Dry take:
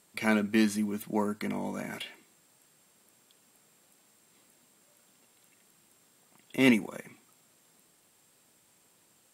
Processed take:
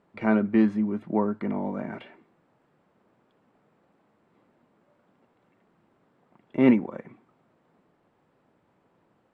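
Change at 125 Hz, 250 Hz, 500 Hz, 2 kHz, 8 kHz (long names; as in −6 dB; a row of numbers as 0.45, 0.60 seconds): +5.0 dB, +5.0 dB, +5.0 dB, −4.0 dB, below −25 dB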